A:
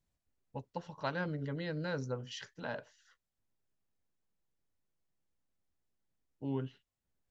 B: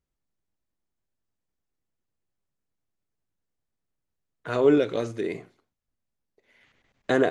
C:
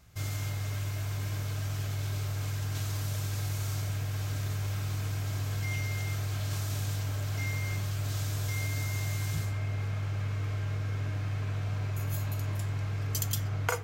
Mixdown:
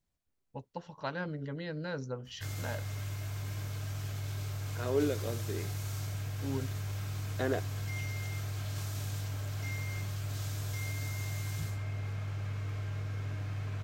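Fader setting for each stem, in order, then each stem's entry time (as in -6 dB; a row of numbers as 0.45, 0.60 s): -0.5, -11.0, -4.5 dB; 0.00, 0.30, 2.25 s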